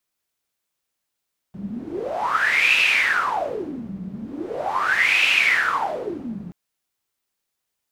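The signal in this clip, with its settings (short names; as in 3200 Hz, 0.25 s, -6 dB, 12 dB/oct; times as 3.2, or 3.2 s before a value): wind-like swept noise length 4.98 s, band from 190 Hz, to 2600 Hz, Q 11, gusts 2, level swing 16 dB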